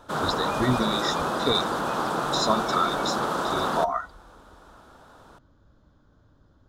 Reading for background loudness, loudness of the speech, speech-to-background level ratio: -27.0 LUFS, -28.0 LUFS, -1.0 dB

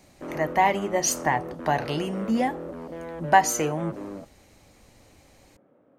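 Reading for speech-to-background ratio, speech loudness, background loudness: 12.0 dB, -25.0 LUFS, -37.0 LUFS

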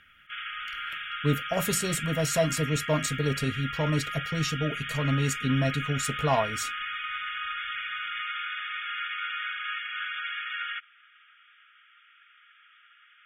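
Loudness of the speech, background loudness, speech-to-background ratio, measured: -28.5 LUFS, -33.0 LUFS, 4.5 dB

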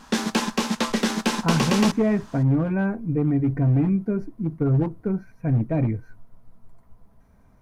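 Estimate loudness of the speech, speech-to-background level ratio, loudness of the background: -23.5 LUFS, 1.0 dB, -24.5 LUFS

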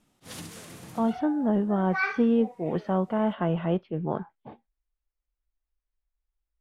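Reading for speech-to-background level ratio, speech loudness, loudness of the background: 17.0 dB, -26.5 LUFS, -43.5 LUFS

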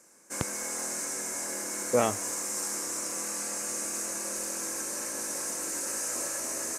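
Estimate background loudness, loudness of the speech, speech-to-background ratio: -31.5 LUFS, -31.0 LUFS, 0.5 dB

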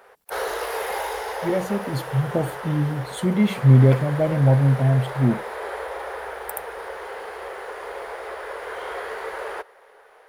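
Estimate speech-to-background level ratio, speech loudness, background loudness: 11.5 dB, -20.5 LUFS, -32.0 LUFS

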